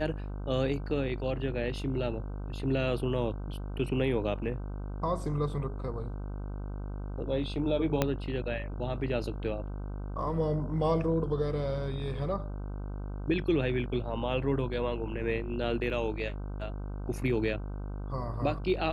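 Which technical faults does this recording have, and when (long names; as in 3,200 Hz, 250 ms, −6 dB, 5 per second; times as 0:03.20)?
mains buzz 50 Hz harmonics 31 −37 dBFS
0:08.02: click −11 dBFS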